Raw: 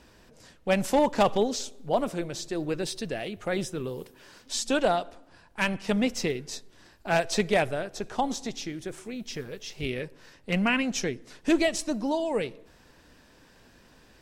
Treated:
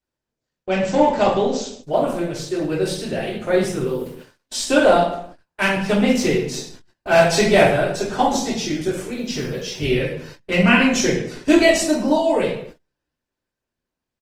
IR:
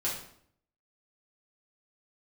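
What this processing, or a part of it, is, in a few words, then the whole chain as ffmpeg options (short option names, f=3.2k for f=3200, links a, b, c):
speakerphone in a meeting room: -filter_complex "[1:a]atrim=start_sample=2205[a];[0:a][a]afir=irnorm=-1:irlink=0,asplit=2[b][c];[c]adelay=120,highpass=300,lowpass=3.4k,asoftclip=type=hard:threshold=-12.5dB,volume=-20dB[d];[b][d]amix=inputs=2:normalize=0,dynaudnorm=f=270:g=17:m=12dB,agate=range=-33dB:threshold=-37dB:ratio=16:detection=peak" -ar 48000 -c:a libopus -b:a 24k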